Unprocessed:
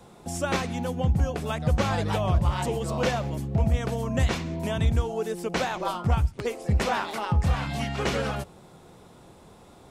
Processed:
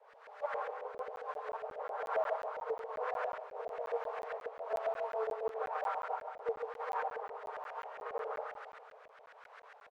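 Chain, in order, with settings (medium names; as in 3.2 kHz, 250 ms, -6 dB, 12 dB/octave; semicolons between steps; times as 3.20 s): comb filter that takes the minimum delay 6.5 ms; treble shelf 2.3 kHz -11.5 dB; delay 146 ms -4.5 dB; hard clipper -24.5 dBFS, distortion -12 dB; word length cut 6-bit, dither triangular; Chebyshev high-pass 420 Hz, order 10; 3.41–5.49 s: doubling 21 ms -6 dB; Schroeder reverb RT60 2.2 s, combs from 28 ms, DRR 3 dB; LFO low-pass saw up 7.4 Hz 600–1800 Hz; harmonic tremolo 1.1 Hz, depth 50%, crossover 600 Hz; crackling interface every 0.18 s, samples 512, zero, from 0.98 s; upward expansion 1.5:1, over -40 dBFS; trim -5 dB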